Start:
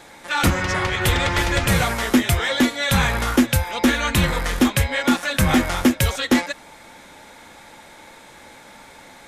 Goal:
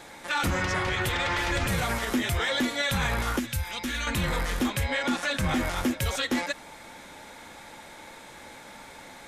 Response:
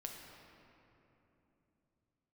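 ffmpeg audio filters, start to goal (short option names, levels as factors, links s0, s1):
-filter_complex "[0:a]alimiter=limit=0.141:level=0:latency=1:release=42,asettb=1/sr,asplit=3[s0][s1][s2];[s0]atrim=end=1.094[s3];[s1]atrim=start=1.09:end=1.51,asetpts=PTS-STARTPTS,afade=t=in:d=0.004:c=qsin,afade=t=out:st=0.416:d=0.004:c=qsin,asplit=2[s4][s5];[s5]highpass=f=720:p=1,volume=2.24,asoftclip=type=tanh:threshold=0.141[s6];[s4][s6]amix=inputs=2:normalize=0,lowpass=f=4700:p=1,volume=0.501[s7];[s2]atrim=start=1.506[s8];[s3][s7]acrossfade=d=0.004:c1=hsin:c2=qsin[s9];[s9][s8]acrossfade=d=0.004:c1=qsin:c2=hsin,asettb=1/sr,asplit=3[s10][s11][s12];[s10]atrim=end=3.394[s13];[s11]atrim=start=3.39:end=4.07,asetpts=PTS-STARTPTS,afade=t=in:d=0.004:c=qsin,afade=t=out:st=0.676:d=0.004:c=qsin,equalizer=f=560:t=o:w=2.5:g=-11.5[s14];[s12]atrim=start=4.066[s15];[s13][s14]acrossfade=d=0.004:c1=hsin:c2=qsin[s16];[s16][s15]acrossfade=d=0.004:c1=qsin:c2=hsin,asettb=1/sr,asplit=3[s17][s18][s19];[s17]atrim=end=4.864[s20];[s18]atrim=start=4.86:end=5.56,asetpts=PTS-STARTPTS,afade=t=in:d=0.004:c=qsin,afade=t=out:st=0.696:d=0.004:c=qsin,lowpass=9900[s21];[s19]atrim=start=5.556[s22];[s20][s21]acrossfade=d=0.004:c1=hsin:c2=qsin[s23];[s23][s22]acrossfade=d=0.004:c1=qsin:c2=hsin,volume=0.841"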